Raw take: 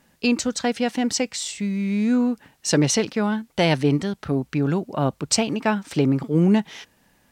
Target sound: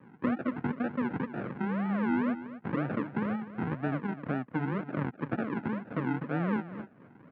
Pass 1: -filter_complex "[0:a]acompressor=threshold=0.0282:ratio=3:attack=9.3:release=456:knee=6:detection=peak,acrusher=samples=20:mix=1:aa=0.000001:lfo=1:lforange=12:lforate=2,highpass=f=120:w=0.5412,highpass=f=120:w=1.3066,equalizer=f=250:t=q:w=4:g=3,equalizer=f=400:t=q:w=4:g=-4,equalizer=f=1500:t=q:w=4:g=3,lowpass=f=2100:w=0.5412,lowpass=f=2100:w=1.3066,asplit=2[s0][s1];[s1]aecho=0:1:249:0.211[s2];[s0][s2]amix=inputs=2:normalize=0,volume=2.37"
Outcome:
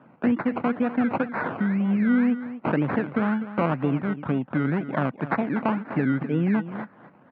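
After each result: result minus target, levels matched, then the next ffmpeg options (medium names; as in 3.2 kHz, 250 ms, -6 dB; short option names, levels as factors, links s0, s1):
compression: peak gain reduction -7.5 dB; decimation with a swept rate: distortion -10 dB
-filter_complex "[0:a]acompressor=threshold=0.00794:ratio=3:attack=9.3:release=456:knee=6:detection=peak,acrusher=samples=20:mix=1:aa=0.000001:lfo=1:lforange=12:lforate=2,highpass=f=120:w=0.5412,highpass=f=120:w=1.3066,equalizer=f=250:t=q:w=4:g=3,equalizer=f=400:t=q:w=4:g=-4,equalizer=f=1500:t=q:w=4:g=3,lowpass=f=2100:w=0.5412,lowpass=f=2100:w=1.3066,asplit=2[s0][s1];[s1]aecho=0:1:249:0.211[s2];[s0][s2]amix=inputs=2:normalize=0,volume=2.37"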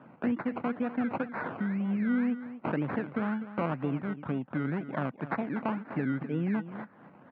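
decimation with a swept rate: distortion -10 dB
-filter_complex "[0:a]acompressor=threshold=0.00794:ratio=3:attack=9.3:release=456:knee=6:detection=peak,acrusher=samples=59:mix=1:aa=0.000001:lfo=1:lforange=35.4:lforate=2,highpass=f=120:w=0.5412,highpass=f=120:w=1.3066,equalizer=f=250:t=q:w=4:g=3,equalizer=f=400:t=q:w=4:g=-4,equalizer=f=1500:t=q:w=4:g=3,lowpass=f=2100:w=0.5412,lowpass=f=2100:w=1.3066,asplit=2[s0][s1];[s1]aecho=0:1:249:0.211[s2];[s0][s2]amix=inputs=2:normalize=0,volume=2.37"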